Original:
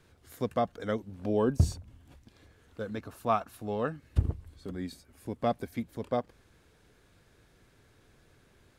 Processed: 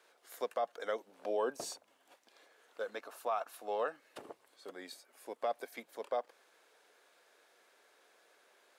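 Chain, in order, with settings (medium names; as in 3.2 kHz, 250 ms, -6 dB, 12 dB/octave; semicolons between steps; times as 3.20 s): ladder high-pass 440 Hz, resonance 25%; peak limiter -30.5 dBFS, peak gain reduction 11 dB; trim +5.5 dB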